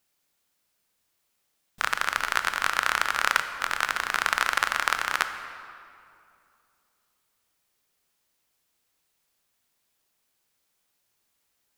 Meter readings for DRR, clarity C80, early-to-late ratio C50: 8.0 dB, 9.5 dB, 9.0 dB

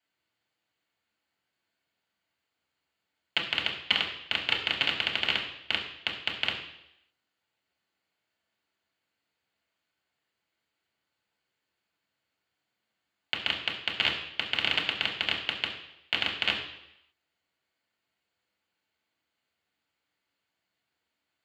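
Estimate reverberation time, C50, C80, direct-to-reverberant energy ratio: 0.80 s, 7.0 dB, 9.5 dB, -2.5 dB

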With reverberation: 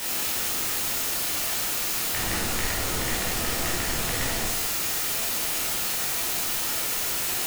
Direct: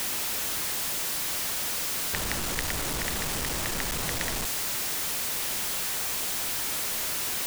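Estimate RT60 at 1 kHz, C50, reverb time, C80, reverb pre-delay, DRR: 0.75 s, 1.5 dB, 0.75 s, 5.0 dB, 12 ms, -6.5 dB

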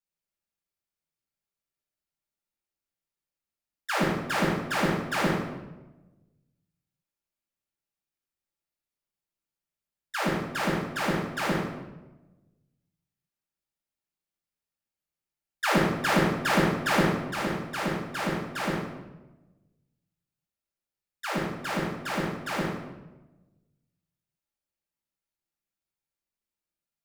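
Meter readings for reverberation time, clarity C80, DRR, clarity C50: 1.1 s, 4.0 dB, -7.5 dB, 0.0 dB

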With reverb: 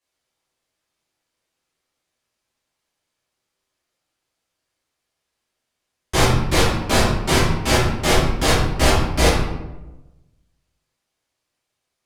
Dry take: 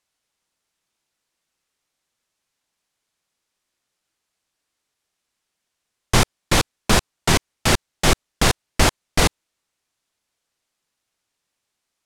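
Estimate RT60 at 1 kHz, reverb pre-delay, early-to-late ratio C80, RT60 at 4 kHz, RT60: 0.90 s, 3 ms, 4.5 dB, 0.60 s, 1.1 s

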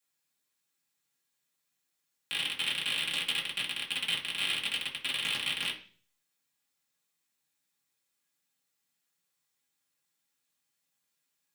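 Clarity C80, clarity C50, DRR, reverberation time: 15.0 dB, 10.0 dB, -5.5 dB, 0.40 s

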